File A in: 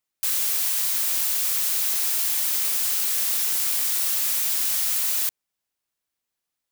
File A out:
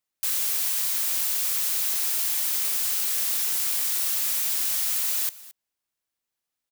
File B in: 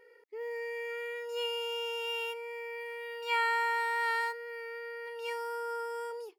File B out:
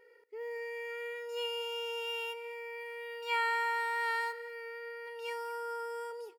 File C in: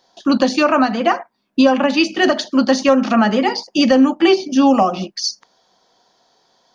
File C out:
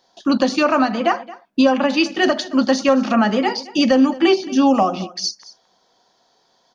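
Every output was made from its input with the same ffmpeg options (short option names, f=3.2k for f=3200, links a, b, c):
-af "aecho=1:1:221:0.112,volume=-2dB"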